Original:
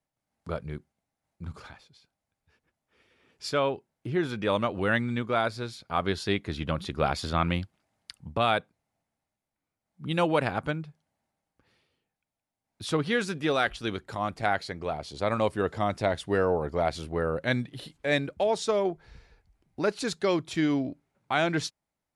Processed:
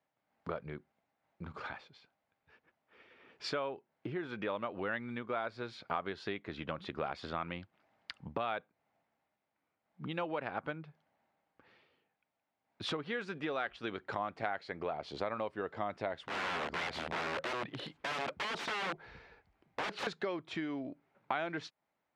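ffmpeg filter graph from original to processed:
ffmpeg -i in.wav -filter_complex "[0:a]asettb=1/sr,asplit=3[link_01][link_02][link_03];[link_01]atrim=end=16.224[link_04];[link_02]atrim=start=16.22:end=20.07,asetpts=PTS-STARTPTS,afade=type=in:duration=0.004:curve=qsin,afade=type=out:start_time=3.846:duration=0.004:curve=qsin,acompressor=threshold=-31dB:ratio=2.5:attack=3.2:release=140:knee=1:detection=peak,aeval=exprs='(mod(42.2*val(0)+1,2)-1)/42.2':channel_layout=same[link_05];[link_03]atrim=start=20.066[link_06];[link_04][link_05]acrossfade=duration=0.004:curve1=hsin:curve2=qsin[link_07];[link_07][link_06]acrossfade=duration=0.004:curve1=qsin:curve2=hsin,lowpass=2600,acompressor=threshold=-38dB:ratio=10,highpass=frequency=400:poles=1,volume=6.5dB" out.wav

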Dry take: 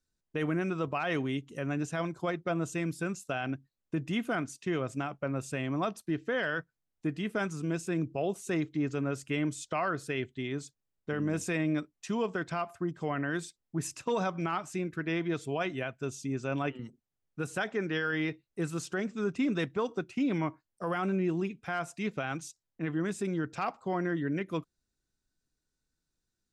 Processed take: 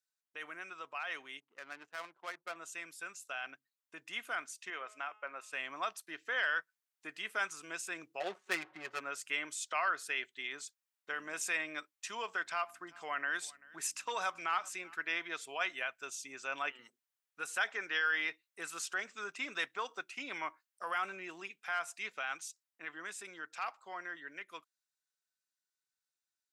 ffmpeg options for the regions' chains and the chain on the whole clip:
ffmpeg -i in.wav -filter_complex "[0:a]asettb=1/sr,asplit=3[link_01][link_02][link_03];[link_01]atrim=end=1.404[link_04];[link_02]atrim=start=1.4:end=2.56,asetpts=PTS-STARTPTS,afade=type=in:duration=0.004:curve=qsin,afade=type=out:start_time=1.156:duration=0.004:curve=qsin,highpass=130,highshelf=frequency=3300:gain=2.5,adynamicsmooth=sensitivity=7.5:basefreq=540[link_05];[link_03]atrim=start=2.556[link_06];[link_04][link_05]acrossfade=duration=0.004:curve1=hsin:curve2=qsin[link_07];[link_07][link_06]acrossfade=duration=0.004:curve1=qsin:curve2=hsin,asettb=1/sr,asplit=3[link_08][link_09][link_10];[link_08]atrim=end=4.704[link_11];[link_09]atrim=start=4.7:end=5.53,asetpts=PTS-STARTPTS,afade=type=in:duration=0.004:curve=qsin,afade=type=out:start_time=0.826:duration=0.004:curve=qsin,bass=frequency=250:gain=-12,treble=frequency=4000:gain=-11,bandreject=frequency=212.7:width_type=h:width=4,bandreject=frequency=425.4:width_type=h:width=4,bandreject=frequency=638.1:width_type=h:width=4,bandreject=frequency=850.8:width_type=h:width=4,bandreject=frequency=1063.5:width_type=h:width=4,bandreject=frequency=1276.2:width_type=h:width=4,bandreject=frequency=1488.9:width_type=h:width=4,bandreject=frequency=1701.6:width_type=h:width=4,bandreject=frequency=1914.3:width_type=h:width=4,bandreject=frequency=2127:width_type=h:width=4,bandreject=frequency=2339.7:width_type=h:width=4,bandreject=frequency=2552.4:width_type=h:width=4,bandreject=frequency=2765.1:width_type=h:width=4,bandreject=frequency=2977.8:width_type=h:width=4,bandreject=frequency=3190.5:width_type=h:width=4,bandreject=frequency=3403.2:width_type=h:width=4,bandreject=frequency=3615.9:width_type=h:width=4,bandreject=frequency=3828.6:width_type=h:width=4,bandreject=frequency=4041.3:width_type=h:width=4,bandreject=frequency=4254:width_type=h:width=4,bandreject=frequency=4466.7:width_type=h:width=4,bandreject=frequency=4679.4:width_type=h:width=4,bandreject=frequency=4892.1:width_type=h:width=4,bandreject=frequency=5104.8:width_type=h:width=4,bandreject=frequency=5317.5:width_type=h:width=4,bandreject=frequency=5530.2:width_type=h:width=4,bandreject=frequency=5742.9:width_type=h:width=4,bandreject=frequency=5955.6:width_type=h:width=4,bandreject=frequency=6168.3:width_type=h:width=4,bandreject=frequency=6381:width_type=h:width=4,bandreject=frequency=6593.7:width_type=h:width=4,bandreject=frequency=6806.4:width_type=h:width=4,bandreject=frequency=7019.1:width_type=h:width=4,bandreject=frequency=7231.8:width_type=h:width=4,bandreject=frequency=7444.5:width_type=h:width=4,bandreject=frequency=7657.2:width_type=h:width=4,bandreject=frequency=7869.9:width_type=h:width=4,bandreject=frequency=8082.6:width_type=h:width=4[link_12];[link_10]atrim=start=5.526[link_13];[link_11][link_12]acrossfade=duration=0.004:curve1=hsin:curve2=qsin[link_14];[link_14][link_13]acrossfade=duration=0.004:curve1=qsin:curve2=hsin,asettb=1/sr,asplit=3[link_15][link_16][link_17];[link_15]atrim=end=8.204[link_18];[link_16]atrim=start=8.2:end=9,asetpts=PTS-STARTPTS,afade=type=in:duration=0.004:curve=qsin,afade=type=out:start_time=0.796:duration=0.004:curve=qsin,aeval=exprs='val(0)+0.5*0.00501*sgn(val(0))':channel_layout=same,aecho=1:1:5.4:0.96,atrim=end_sample=35280,adynamicsmooth=sensitivity=5.5:basefreq=600[link_19];[link_17]atrim=start=8.996[link_20];[link_18][link_19]acrossfade=duration=0.004:curve1=hsin:curve2=qsin[link_21];[link_21][link_20]acrossfade=duration=0.004:curve1=qsin:curve2=hsin,asettb=1/sr,asplit=3[link_22][link_23][link_24];[link_22]atrim=end=12.424[link_25];[link_23]atrim=start=12.42:end=14.95,asetpts=PTS-STARTPTS,afade=type=in:duration=0.004:curve=qsin,afade=type=out:start_time=2.526:duration=0.004:curve=qsin,aecho=1:1:388:0.0708,atrim=end_sample=111573,aeval=exprs='val(0)+0.00447*(sin(2*PI*60*n/s)+sin(2*PI*2*60*n/s)/2+sin(2*PI*3*60*n/s)/3+sin(2*PI*4*60*n/s)/4+sin(2*PI*5*60*n/s)/5)':channel_layout=same[link_26];[link_24]atrim=start=14.946[link_27];[link_25][link_26]acrossfade=duration=0.004:curve1=hsin:curve2=qsin[link_28];[link_28][link_27]acrossfade=duration=0.004:curve1=qsin:curve2=hsin,highpass=1300,equalizer=frequency=4700:width=0.61:gain=-3,dynaudnorm=framelen=550:gausssize=17:maxgain=7dB,volume=-2.5dB" out.wav

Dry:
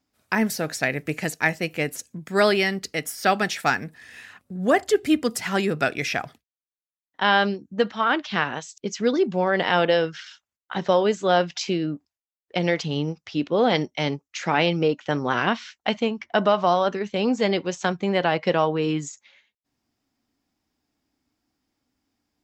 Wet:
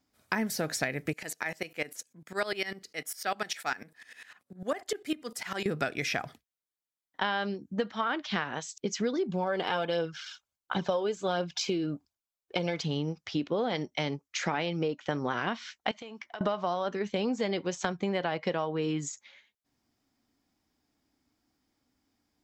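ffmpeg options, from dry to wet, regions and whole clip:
ffmpeg -i in.wav -filter_complex "[0:a]asettb=1/sr,asplit=3[link_01][link_02][link_03];[link_01]atrim=end=1.134[link_04];[link_02]atrim=start=1.13:end=5.66,asetpts=PTS-STARTPTS,afade=type=in:duration=0.004:curve=qsin,afade=type=out:start_time=4.526:duration=0.004:curve=qsin,highpass=frequency=490:poles=1,aeval=exprs='val(0)*pow(10,-18*if(lt(mod(-10*n/s,1),2*abs(-10)/1000),1-mod(-10*n/s,1)/(2*abs(-10)/1000),(mod(-10*n/s,1)-2*abs(-10)/1000)/(1-2*abs(-10)/1000))/20)':channel_layout=same[link_05];[link_03]atrim=start=5.656[link_06];[link_04][link_05]acrossfade=duration=0.004:curve1=hsin:curve2=qsin[link_07];[link_07][link_06]acrossfade=duration=0.004:curve1=qsin:curve2=hsin,asettb=1/sr,asplit=3[link_08][link_09][link_10];[link_08]atrim=end=9.294[link_11];[link_09]atrim=start=9.29:end=12.81,asetpts=PTS-STARTPTS,afade=type=in:duration=0.004:curve=qsin,afade=type=out:start_time=3.516:duration=0.004:curve=qsin,bandreject=frequency=1900:width=5.6,aphaser=in_gain=1:out_gain=1:delay=2.8:decay=0.4:speed=1.4:type=triangular[link_12];[link_10]atrim=start=12.806[link_13];[link_11][link_12]acrossfade=duration=0.004:curve1=hsin:curve2=qsin[link_14];[link_14][link_13]acrossfade=duration=0.004:curve1=qsin:curve2=hsin,asettb=1/sr,asplit=3[link_15][link_16][link_17];[link_15]atrim=end=15.914[link_18];[link_16]atrim=start=15.91:end=16.41,asetpts=PTS-STARTPTS,afade=type=in:duration=0.004:curve=qsin,afade=type=out:start_time=0.496:duration=0.004:curve=qsin,highpass=frequency=640:poles=1,acompressor=threshold=-37dB:ratio=10:attack=3.2:release=140:knee=1:detection=peak[link_19];[link_17]atrim=start=16.406[link_20];[link_18][link_19]acrossfade=duration=0.004:curve1=hsin:curve2=qsin[link_21];[link_21][link_20]acrossfade=duration=0.004:curve1=qsin:curve2=hsin,acompressor=threshold=-27dB:ratio=6,bandreject=frequency=2700:width=20" out.wav

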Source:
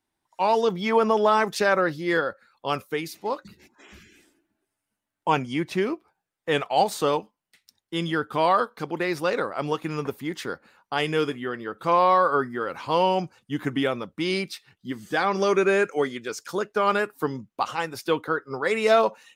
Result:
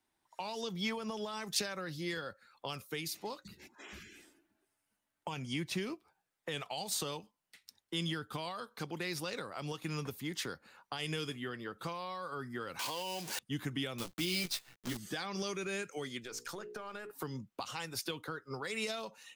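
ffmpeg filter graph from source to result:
ffmpeg -i in.wav -filter_complex "[0:a]asettb=1/sr,asplit=3[link_01][link_02][link_03];[link_01]atrim=end=12.794[link_04];[link_02]atrim=start=12.79:end=13.39,asetpts=PTS-STARTPTS,afade=type=in:duration=0.004:curve=qsin,afade=type=out:start_time=0.596:duration=0.004:curve=qsin,aeval=exprs='val(0)+0.5*0.0355*sgn(val(0))':channel_layout=same,highpass=290,bandreject=frequency=1300:width=8.7[link_05];[link_03]atrim=start=13.386[link_06];[link_04][link_05]acrossfade=duration=0.004:curve1=hsin:curve2=qsin[link_07];[link_07][link_06]acrossfade=duration=0.004:curve1=qsin:curve2=hsin,asettb=1/sr,asplit=3[link_08][link_09][link_10];[link_08]atrim=end=13.984[link_11];[link_09]atrim=start=13.98:end=14.97,asetpts=PTS-STARTPTS,afade=type=in:duration=0.004:curve=qsin,afade=type=out:start_time=0.986:duration=0.004:curve=qsin,equalizer=frequency=340:width=7.2:gain=4.5,acrusher=bits=7:dc=4:mix=0:aa=0.000001,asplit=2[link_12][link_13];[link_13]adelay=17,volume=-5dB[link_14];[link_12][link_14]amix=inputs=2:normalize=0,atrim=end_sample=43659[link_15];[link_10]atrim=start=14.966[link_16];[link_11][link_15]acrossfade=duration=0.004:curve1=hsin:curve2=qsin[link_17];[link_17][link_16]acrossfade=duration=0.004:curve1=qsin:curve2=hsin,asettb=1/sr,asplit=3[link_18][link_19][link_20];[link_18]atrim=end=16.234[link_21];[link_19]atrim=start=16.23:end=17.11,asetpts=PTS-STARTPTS,afade=type=in:duration=0.004:curve=qsin,afade=type=out:start_time=0.876:duration=0.004:curve=qsin,aeval=exprs='if(lt(val(0),0),0.708*val(0),val(0))':channel_layout=same,bandreject=frequency=60:width_type=h:width=6,bandreject=frequency=120:width_type=h:width=6,bandreject=frequency=180:width_type=h:width=6,bandreject=frequency=240:width_type=h:width=6,bandreject=frequency=300:width_type=h:width=6,bandreject=frequency=360:width_type=h:width=6,bandreject=frequency=420:width_type=h:width=6,bandreject=frequency=480:width_type=h:width=6,acompressor=threshold=-36dB:ratio=10:attack=3.2:release=140:knee=1:detection=peak[link_22];[link_20]atrim=start=17.106[link_23];[link_21][link_22]acrossfade=duration=0.004:curve1=hsin:curve2=qsin[link_24];[link_24][link_23]acrossfade=duration=0.004:curve1=qsin:curve2=hsin,lowshelf=frequency=350:gain=-4,alimiter=limit=-18dB:level=0:latency=1:release=123,acrossover=split=180|3000[link_25][link_26][link_27];[link_26]acompressor=threshold=-41dB:ratio=6[link_28];[link_25][link_28][link_27]amix=inputs=3:normalize=0" out.wav

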